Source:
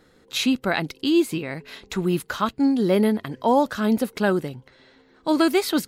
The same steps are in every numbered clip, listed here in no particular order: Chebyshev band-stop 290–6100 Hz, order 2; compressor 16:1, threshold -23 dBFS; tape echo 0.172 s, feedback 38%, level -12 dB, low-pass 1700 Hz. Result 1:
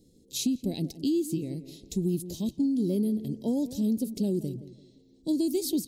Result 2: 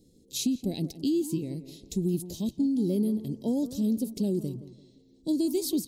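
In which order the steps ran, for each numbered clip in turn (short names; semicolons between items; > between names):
tape echo > Chebyshev band-stop > compressor; Chebyshev band-stop > compressor > tape echo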